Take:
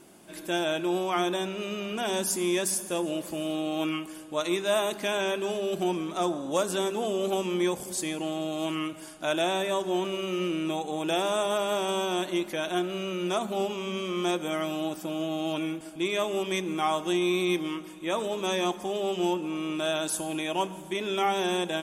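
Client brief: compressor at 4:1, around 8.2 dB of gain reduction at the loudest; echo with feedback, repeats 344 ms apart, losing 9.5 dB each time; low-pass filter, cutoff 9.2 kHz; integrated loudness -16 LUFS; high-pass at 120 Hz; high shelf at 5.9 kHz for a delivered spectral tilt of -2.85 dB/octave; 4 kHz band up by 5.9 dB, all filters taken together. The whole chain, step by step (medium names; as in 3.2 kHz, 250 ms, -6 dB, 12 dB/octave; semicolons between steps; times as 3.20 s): high-pass 120 Hz; low-pass 9.2 kHz; peaking EQ 4 kHz +5.5 dB; treble shelf 5.9 kHz +7 dB; compression 4:1, threshold -31 dBFS; feedback delay 344 ms, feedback 33%, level -9.5 dB; trim +17 dB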